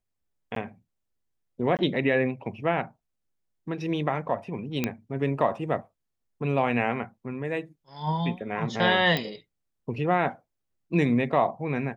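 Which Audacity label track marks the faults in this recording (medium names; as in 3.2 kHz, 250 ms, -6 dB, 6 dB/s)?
0.550000	0.560000	dropout 13 ms
1.770000	1.790000	dropout 18 ms
4.840000	4.840000	pop -11 dBFS
9.170000	9.170000	pop -13 dBFS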